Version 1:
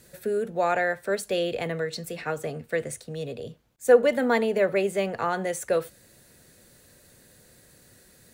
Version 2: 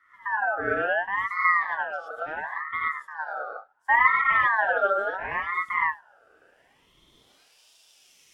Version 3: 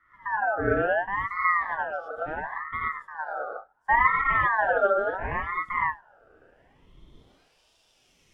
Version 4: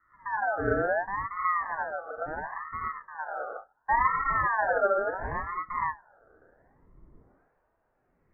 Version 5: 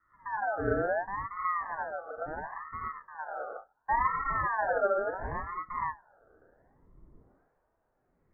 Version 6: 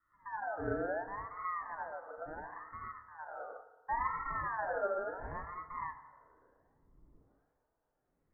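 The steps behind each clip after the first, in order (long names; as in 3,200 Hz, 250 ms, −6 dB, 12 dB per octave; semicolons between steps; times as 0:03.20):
reverb whose tail is shaped and stops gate 130 ms rising, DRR −4 dB; band-pass filter sweep 300 Hz → 4,300 Hz, 0:05.99–0:07.68; ring modulator whose carrier an LFO sweeps 1,300 Hz, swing 25%, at 0.71 Hz; level +5 dB
spectral tilt −3.5 dB per octave
Butterworth low-pass 1,800 Hz 48 dB per octave; level −2.5 dB
high-shelf EQ 2,000 Hz −8.5 dB; level −1.5 dB
feedback delay network reverb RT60 1.5 s, low-frequency decay 0.95×, high-frequency decay 0.6×, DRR 10 dB; level −7.5 dB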